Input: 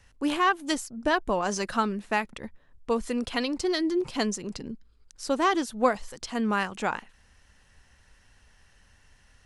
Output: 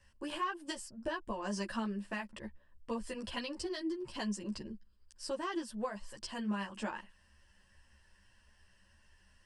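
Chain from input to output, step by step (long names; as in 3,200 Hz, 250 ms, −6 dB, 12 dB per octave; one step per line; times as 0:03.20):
EQ curve with evenly spaced ripples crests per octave 1.3, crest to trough 8 dB
downward compressor 6 to 1, threshold −26 dBFS, peak gain reduction 11 dB
string-ensemble chorus
level −5 dB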